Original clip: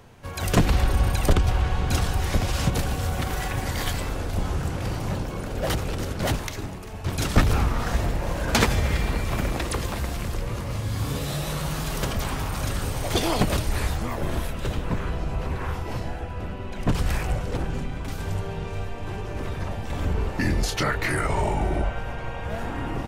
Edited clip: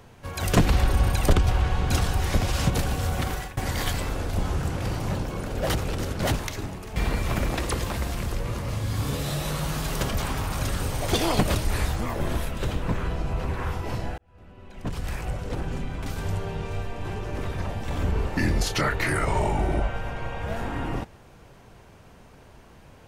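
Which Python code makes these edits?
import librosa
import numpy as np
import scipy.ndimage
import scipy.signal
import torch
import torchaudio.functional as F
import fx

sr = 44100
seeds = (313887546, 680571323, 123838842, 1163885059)

y = fx.edit(x, sr, fx.fade_out_to(start_s=3.28, length_s=0.29, floor_db=-20.5),
    fx.cut(start_s=6.96, length_s=2.02),
    fx.fade_in_span(start_s=16.2, length_s=1.87), tone=tone)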